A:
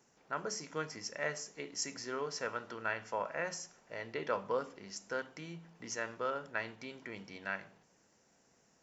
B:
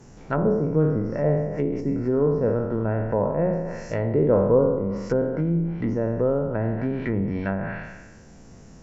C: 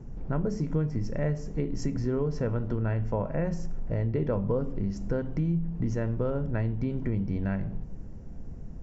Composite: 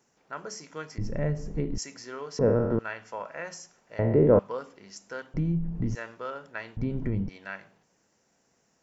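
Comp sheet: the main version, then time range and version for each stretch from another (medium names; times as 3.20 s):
A
0.98–1.78 s: from C
2.39–2.79 s: from B
3.99–4.39 s: from B
5.34–5.95 s: from C
6.77–7.29 s: from C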